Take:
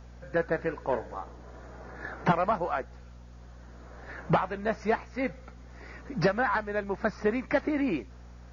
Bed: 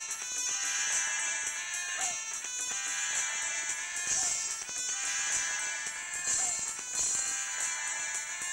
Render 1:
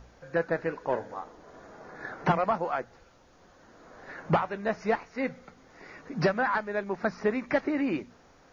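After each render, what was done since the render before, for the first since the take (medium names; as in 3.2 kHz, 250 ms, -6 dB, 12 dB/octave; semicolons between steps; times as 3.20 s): de-hum 60 Hz, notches 4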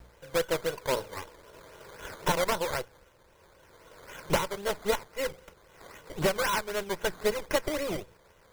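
comb filter that takes the minimum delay 2 ms; decimation with a swept rate 13×, swing 60% 3.8 Hz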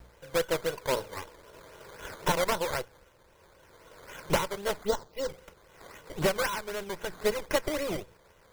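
4.83–5.29 s: touch-sensitive phaser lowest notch 570 Hz, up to 2.4 kHz, full sweep at -29 dBFS; 6.46–7.21 s: compression 4:1, threshold -30 dBFS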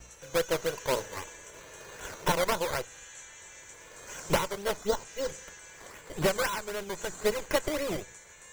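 add bed -16 dB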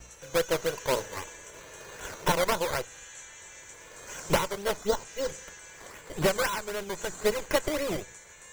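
trim +1.5 dB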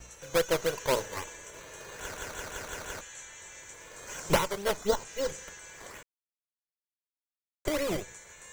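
1.99 s: stutter in place 0.17 s, 6 plays; 6.03–7.65 s: mute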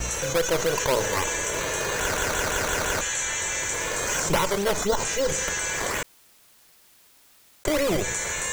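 level flattener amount 70%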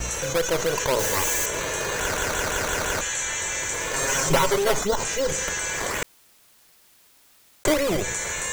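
0.99–1.46 s: zero-crossing glitches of -20.5 dBFS; 3.93–4.79 s: comb 7.4 ms, depth 90%; 6.02–7.74 s: waveshaping leveller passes 2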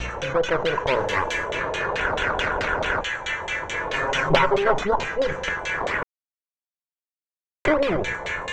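bit crusher 8-bit; LFO low-pass saw down 4.6 Hz 680–3600 Hz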